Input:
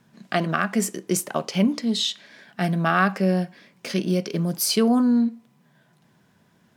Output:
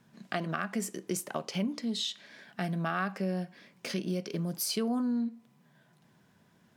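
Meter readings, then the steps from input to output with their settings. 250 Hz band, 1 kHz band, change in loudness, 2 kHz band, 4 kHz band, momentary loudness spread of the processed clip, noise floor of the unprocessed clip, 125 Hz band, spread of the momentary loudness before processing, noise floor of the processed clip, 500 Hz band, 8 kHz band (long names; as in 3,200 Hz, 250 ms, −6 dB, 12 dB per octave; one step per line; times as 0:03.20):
−11.0 dB, −11.0 dB, −10.5 dB, −11.0 dB, −9.0 dB, 8 LU, −62 dBFS, −10.0 dB, 9 LU, −66 dBFS, −10.5 dB, −9.5 dB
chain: downward compressor 2 to 1, threshold −30 dBFS, peak gain reduction 9 dB
level −4 dB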